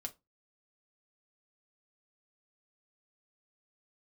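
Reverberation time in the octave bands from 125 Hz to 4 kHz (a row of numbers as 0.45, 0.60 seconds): 0.30, 0.25, 0.20, 0.20, 0.15, 0.15 seconds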